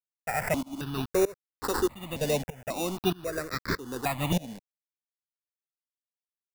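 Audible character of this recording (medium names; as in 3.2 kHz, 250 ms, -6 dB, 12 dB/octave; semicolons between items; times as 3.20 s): a quantiser's noise floor 6-bit, dither none; tremolo saw up 1.6 Hz, depth 95%; aliases and images of a low sample rate 3.2 kHz, jitter 0%; notches that jump at a steady rate 3.7 Hz 340–2800 Hz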